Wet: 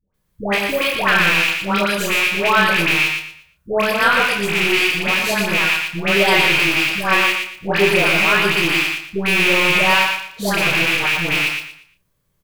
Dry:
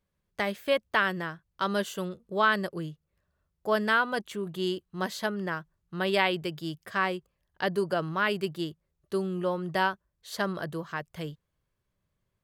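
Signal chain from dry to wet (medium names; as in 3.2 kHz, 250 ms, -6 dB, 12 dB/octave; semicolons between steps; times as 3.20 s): rattle on loud lows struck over -47 dBFS, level -14 dBFS; treble shelf 7.4 kHz +11.5 dB; phase dispersion highs, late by 143 ms, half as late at 850 Hz; in parallel at -5 dB: overload inside the chain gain 17 dB; on the sum: doubling 30 ms -7 dB; on a send: feedback delay 117 ms, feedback 28%, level -4.5 dB; on the sum: simulated room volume 150 m³, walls furnished, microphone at 0.54 m; trim +3 dB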